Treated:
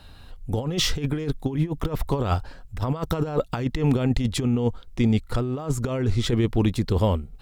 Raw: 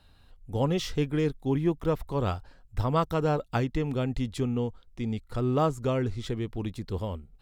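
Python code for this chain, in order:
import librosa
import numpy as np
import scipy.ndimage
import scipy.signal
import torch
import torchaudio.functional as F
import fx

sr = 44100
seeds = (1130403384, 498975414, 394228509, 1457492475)

y = fx.over_compress(x, sr, threshold_db=-30.0, ratio=-0.5)
y = y * librosa.db_to_amplitude(8.5)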